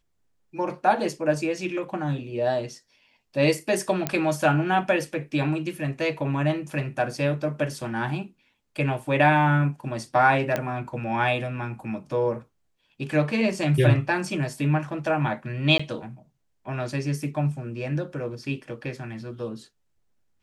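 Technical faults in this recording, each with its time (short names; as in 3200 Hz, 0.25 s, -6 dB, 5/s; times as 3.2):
4.07 pop -8 dBFS
10.56 pop -12 dBFS
15.78–15.79 gap 15 ms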